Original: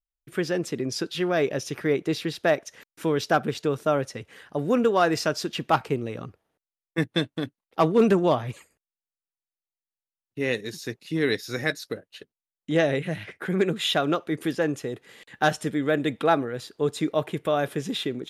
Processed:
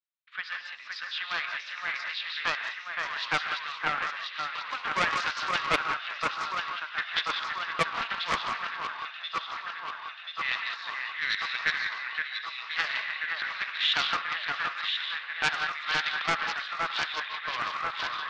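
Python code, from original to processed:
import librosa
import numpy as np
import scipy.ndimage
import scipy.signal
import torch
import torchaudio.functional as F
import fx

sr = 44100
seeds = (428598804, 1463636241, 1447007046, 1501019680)

p1 = fx.tape_stop_end(x, sr, length_s=0.85)
p2 = scipy.signal.sosfilt(scipy.signal.ellip(3, 1.0, 50, [1100.0, 4100.0], 'bandpass', fs=sr, output='sos'), p1)
p3 = p2 + fx.echo_alternate(p2, sr, ms=518, hz=2300.0, feedback_pct=85, wet_db=-3.5, dry=0)
p4 = fx.rev_gated(p3, sr, seeds[0], gate_ms=210, shape='rising', drr_db=4.5)
p5 = fx.doppler_dist(p4, sr, depth_ms=0.33)
y = F.gain(torch.from_numpy(p5), 1.0).numpy()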